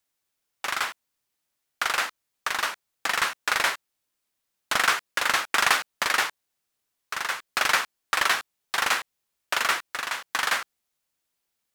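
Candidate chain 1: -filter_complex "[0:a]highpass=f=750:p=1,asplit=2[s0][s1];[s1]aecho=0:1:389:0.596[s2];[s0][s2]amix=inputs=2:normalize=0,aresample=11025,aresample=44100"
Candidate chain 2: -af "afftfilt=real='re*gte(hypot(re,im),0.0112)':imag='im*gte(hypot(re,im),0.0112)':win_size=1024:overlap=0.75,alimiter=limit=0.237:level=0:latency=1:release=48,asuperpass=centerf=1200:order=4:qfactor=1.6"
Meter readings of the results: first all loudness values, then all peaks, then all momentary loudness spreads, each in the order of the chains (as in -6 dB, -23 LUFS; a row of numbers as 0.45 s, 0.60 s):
-26.5 LUFS, -32.0 LUFS; -5.5 dBFS, -14.5 dBFS; 10 LU, 6 LU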